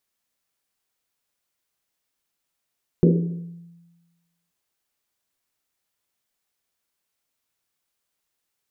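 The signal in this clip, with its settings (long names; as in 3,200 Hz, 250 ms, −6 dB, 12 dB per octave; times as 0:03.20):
drum after Risset length 1.48 s, pitch 170 Hz, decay 1.28 s, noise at 360 Hz, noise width 250 Hz, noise 30%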